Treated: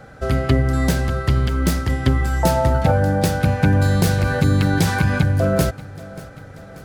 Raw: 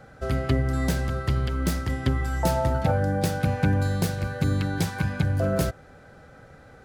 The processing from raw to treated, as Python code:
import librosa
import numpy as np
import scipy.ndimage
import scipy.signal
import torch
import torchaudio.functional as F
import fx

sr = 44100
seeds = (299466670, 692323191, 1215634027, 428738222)

p1 = x + fx.echo_feedback(x, sr, ms=586, feedback_pct=58, wet_db=-19, dry=0)
p2 = fx.env_flatten(p1, sr, amount_pct=50, at=(3.74, 5.23))
y = p2 * librosa.db_to_amplitude(6.5)